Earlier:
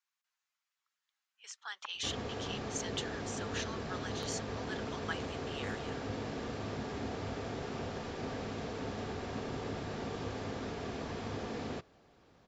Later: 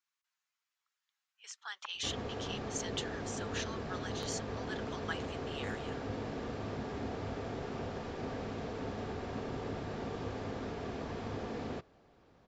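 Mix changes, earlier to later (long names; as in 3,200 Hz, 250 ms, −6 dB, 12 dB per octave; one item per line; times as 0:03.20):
background: add spectral tilt −2 dB per octave
master: add low-shelf EQ 280 Hz −7.5 dB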